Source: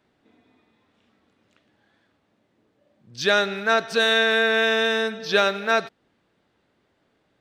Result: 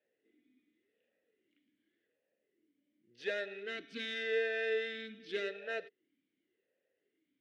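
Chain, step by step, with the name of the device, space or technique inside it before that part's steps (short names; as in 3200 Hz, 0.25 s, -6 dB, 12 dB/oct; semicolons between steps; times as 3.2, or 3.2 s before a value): talk box (tube stage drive 18 dB, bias 0.7; vowel sweep e-i 0.88 Hz)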